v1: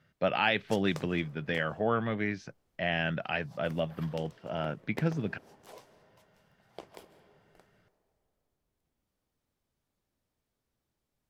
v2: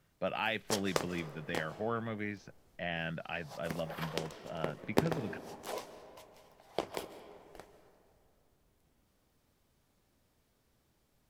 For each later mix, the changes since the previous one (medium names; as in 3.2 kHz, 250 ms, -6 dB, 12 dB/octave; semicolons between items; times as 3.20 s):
speech -7.0 dB; background +10.5 dB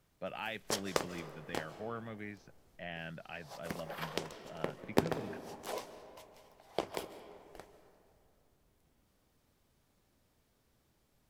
speech -6.5 dB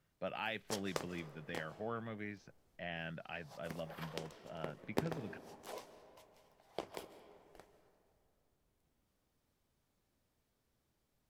background -7.5 dB